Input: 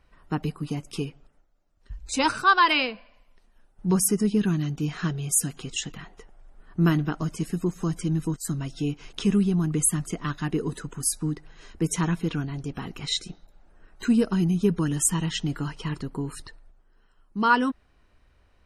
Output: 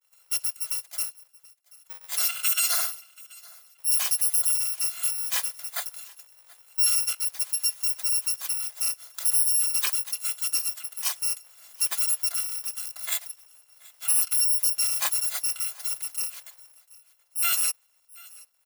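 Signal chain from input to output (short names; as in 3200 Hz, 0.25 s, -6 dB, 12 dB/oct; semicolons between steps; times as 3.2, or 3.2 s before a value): FFT order left unsorted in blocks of 256 samples; expander -56 dBFS; Bessel high-pass 870 Hz, order 6; limiter -14.5 dBFS, peak gain reduction 8 dB; feedback echo 0.731 s, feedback 32%, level -23 dB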